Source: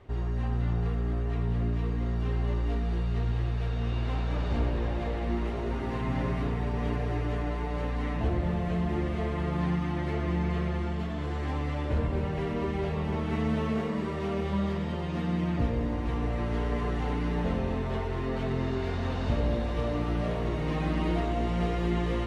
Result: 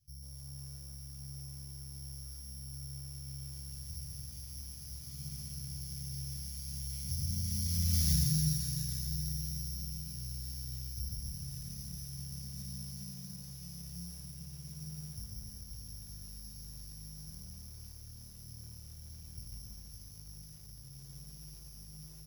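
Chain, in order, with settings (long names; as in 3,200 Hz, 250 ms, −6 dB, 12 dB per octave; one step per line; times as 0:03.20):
source passing by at 0:08.09, 47 m/s, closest 4.8 metres
dynamic equaliser 1,400 Hz, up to +6 dB, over −58 dBFS, Q 0.76
bad sample-rate conversion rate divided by 8×, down none, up zero stuff
Chebyshev band-stop filter 140–2,500 Hz, order 2
downward compressor 2 to 1, threshold −49 dBFS, peak gain reduction 18 dB
low shelf with overshoot 260 Hz +14 dB, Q 1.5
on a send: repeating echo 314 ms, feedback 54%, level −15.5 dB
on the sum: feedback echo at a low word length 141 ms, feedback 35%, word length 10 bits, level −6.5 dB
level +5.5 dB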